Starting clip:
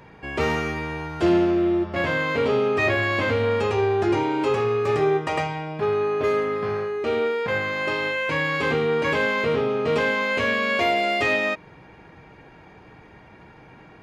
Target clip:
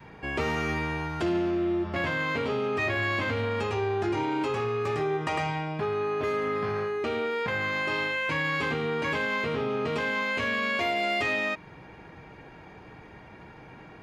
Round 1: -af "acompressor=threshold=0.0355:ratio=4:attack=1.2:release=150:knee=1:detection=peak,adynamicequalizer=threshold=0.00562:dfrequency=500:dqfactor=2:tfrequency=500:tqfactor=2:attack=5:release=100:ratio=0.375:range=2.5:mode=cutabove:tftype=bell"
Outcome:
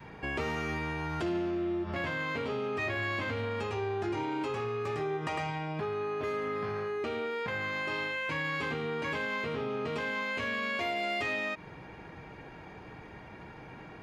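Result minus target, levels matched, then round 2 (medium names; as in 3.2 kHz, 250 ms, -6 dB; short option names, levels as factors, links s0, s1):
compression: peak gain reduction +5 dB
-af "acompressor=threshold=0.0794:ratio=4:attack=1.2:release=150:knee=1:detection=peak,adynamicequalizer=threshold=0.00562:dfrequency=500:dqfactor=2:tfrequency=500:tqfactor=2:attack=5:release=100:ratio=0.375:range=2.5:mode=cutabove:tftype=bell"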